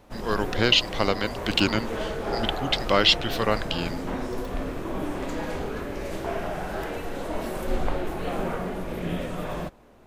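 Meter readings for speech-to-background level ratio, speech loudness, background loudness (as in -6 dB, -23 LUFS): 8.0 dB, -24.0 LUFS, -32.0 LUFS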